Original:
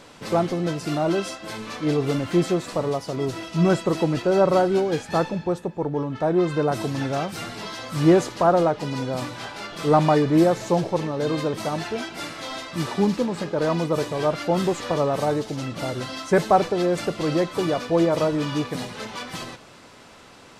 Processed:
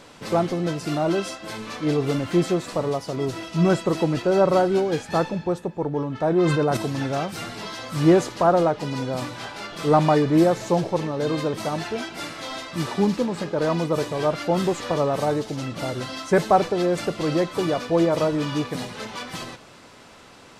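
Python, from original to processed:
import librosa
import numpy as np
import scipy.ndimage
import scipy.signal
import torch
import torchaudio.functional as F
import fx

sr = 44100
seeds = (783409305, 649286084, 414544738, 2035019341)

y = fx.sustainer(x, sr, db_per_s=29.0, at=(6.23, 6.77))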